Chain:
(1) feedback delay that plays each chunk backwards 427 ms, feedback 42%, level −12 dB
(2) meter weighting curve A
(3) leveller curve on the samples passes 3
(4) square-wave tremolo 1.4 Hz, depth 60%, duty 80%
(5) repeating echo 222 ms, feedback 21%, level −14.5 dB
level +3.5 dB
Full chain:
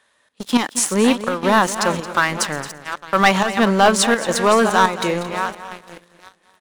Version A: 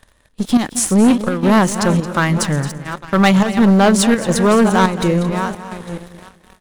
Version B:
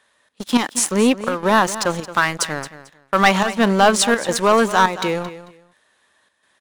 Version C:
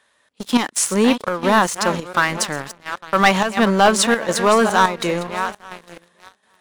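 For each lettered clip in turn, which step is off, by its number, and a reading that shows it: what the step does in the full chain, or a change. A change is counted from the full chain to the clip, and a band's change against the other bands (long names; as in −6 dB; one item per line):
2, 125 Hz band +11.0 dB
1, change in momentary loudness spread −3 LU
5, change in momentary loudness spread −1 LU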